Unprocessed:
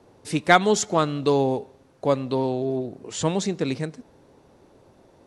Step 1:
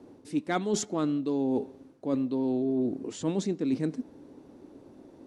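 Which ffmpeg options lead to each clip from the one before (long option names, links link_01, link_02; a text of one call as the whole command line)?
ffmpeg -i in.wav -af "equalizer=frequency=280:width_type=o:width=0.97:gain=15,areverse,acompressor=threshold=-20dB:ratio=12,areverse,volume=-4.5dB" out.wav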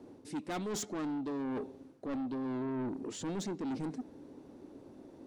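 ffmpeg -i in.wav -af "asoftclip=type=tanh:threshold=-32dB,volume=-1.5dB" out.wav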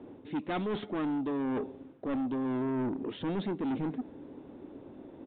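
ffmpeg -i in.wav -af "aresample=8000,aresample=44100,volume=4.5dB" out.wav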